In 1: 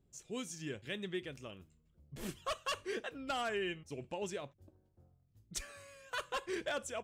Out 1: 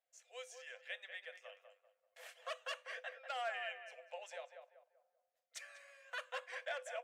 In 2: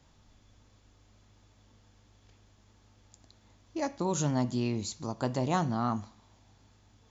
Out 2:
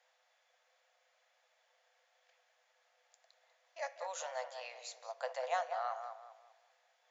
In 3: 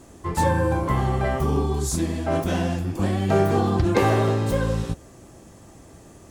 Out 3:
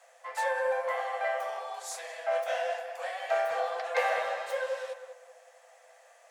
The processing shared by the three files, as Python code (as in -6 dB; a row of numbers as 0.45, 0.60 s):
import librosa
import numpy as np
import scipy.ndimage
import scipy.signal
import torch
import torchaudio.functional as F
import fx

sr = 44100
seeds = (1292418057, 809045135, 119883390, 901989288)

p1 = scipy.signal.sosfilt(scipy.signal.cheby1(6, 9, 490.0, 'highpass', fs=sr, output='sos'), x)
p2 = fx.high_shelf(p1, sr, hz=8100.0, db=-5.0)
y = p2 + fx.echo_tape(p2, sr, ms=194, feedback_pct=39, wet_db=-6.0, lp_hz=1500.0, drive_db=17.0, wow_cents=15, dry=0)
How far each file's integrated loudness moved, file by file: -5.5, -9.5, -9.0 LU